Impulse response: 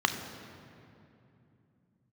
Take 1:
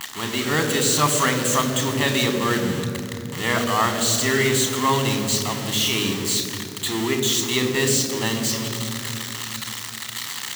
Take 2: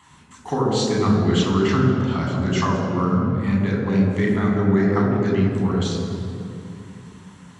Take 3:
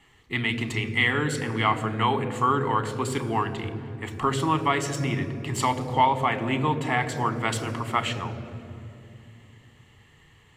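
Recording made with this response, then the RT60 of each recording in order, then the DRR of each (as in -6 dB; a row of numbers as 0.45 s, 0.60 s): 1; 2.8 s, 2.8 s, 2.8 s; 6.0 dB, -2.5 dB, 10.5 dB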